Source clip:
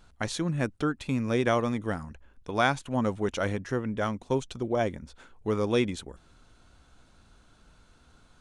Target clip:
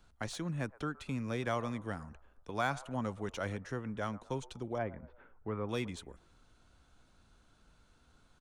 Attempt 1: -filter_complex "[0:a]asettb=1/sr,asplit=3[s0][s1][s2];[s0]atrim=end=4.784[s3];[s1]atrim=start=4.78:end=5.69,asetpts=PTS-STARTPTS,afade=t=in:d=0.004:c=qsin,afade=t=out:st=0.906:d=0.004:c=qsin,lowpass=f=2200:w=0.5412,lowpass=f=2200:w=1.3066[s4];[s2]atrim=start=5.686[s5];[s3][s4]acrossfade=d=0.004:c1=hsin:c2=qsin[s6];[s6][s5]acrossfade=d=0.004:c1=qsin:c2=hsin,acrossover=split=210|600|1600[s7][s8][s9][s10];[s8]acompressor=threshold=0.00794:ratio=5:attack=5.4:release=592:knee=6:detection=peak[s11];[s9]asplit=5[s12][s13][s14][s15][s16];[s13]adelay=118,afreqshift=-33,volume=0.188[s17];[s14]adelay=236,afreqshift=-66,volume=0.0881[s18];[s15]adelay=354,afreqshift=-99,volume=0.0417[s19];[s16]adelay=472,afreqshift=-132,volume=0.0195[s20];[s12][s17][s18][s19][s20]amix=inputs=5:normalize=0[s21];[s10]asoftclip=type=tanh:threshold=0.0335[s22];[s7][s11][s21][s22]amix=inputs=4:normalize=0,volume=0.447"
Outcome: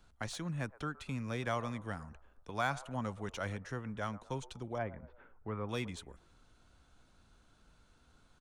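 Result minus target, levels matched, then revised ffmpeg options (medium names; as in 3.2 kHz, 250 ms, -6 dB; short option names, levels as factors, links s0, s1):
compression: peak gain reduction +7.5 dB
-filter_complex "[0:a]asettb=1/sr,asplit=3[s0][s1][s2];[s0]atrim=end=4.784[s3];[s1]atrim=start=4.78:end=5.69,asetpts=PTS-STARTPTS,afade=t=in:d=0.004:c=qsin,afade=t=out:st=0.906:d=0.004:c=qsin,lowpass=f=2200:w=0.5412,lowpass=f=2200:w=1.3066[s4];[s2]atrim=start=5.686[s5];[s3][s4]acrossfade=d=0.004:c1=hsin:c2=qsin[s6];[s6][s5]acrossfade=d=0.004:c1=qsin:c2=hsin,acrossover=split=210|600|1600[s7][s8][s9][s10];[s8]acompressor=threshold=0.0237:ratio=5:attack=5.4:release=592:knee=6:detection=peak[s11];[s9]asplit=5[s12][s13][s14][s15][s16];[s13]adelay=118,afreqshift=-33,volume=0.188[s17];[s14]adelay=236,afreqshift=-66,volume=0.0881[s18];[s15]adelay=354,afreqshift=-99,volume=0.0417[s19];[s16]adelay=472,afreqshift=-132,volume=0.0195[s20];[s12][s17][s18][s19][s20]amix=inputs=5:normalize=0[s21];[s10]asoftclip=type=tanh:threshold=0.0335[s22];[s7][s11][s21][s22]amix=inputs=4:normalize=0,volume=0.447"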